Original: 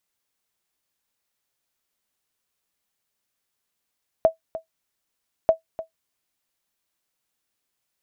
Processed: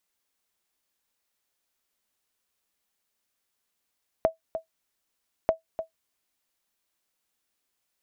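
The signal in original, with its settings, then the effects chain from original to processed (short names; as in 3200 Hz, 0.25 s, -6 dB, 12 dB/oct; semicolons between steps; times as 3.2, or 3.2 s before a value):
sonar ping 649 Hz, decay 0.12 s, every 1.24 s, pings 2, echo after 0.30 s, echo -15 dB -7 dBFS
bell 130 Hz -14 dB 0.26 oct; compressor 3:1, threshold -23 dBFS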